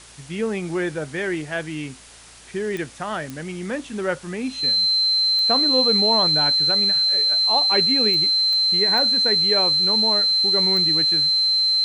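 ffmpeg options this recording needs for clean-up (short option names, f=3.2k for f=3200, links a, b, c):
-af "adeclick=t=4,bandreject=f=57:t=h:w=4,bandreject=f=114:t=h:w=4,bandreject=f=171:t=h:w=4,bandreject=f=4.1k:w=30,afwtdn=0.0071"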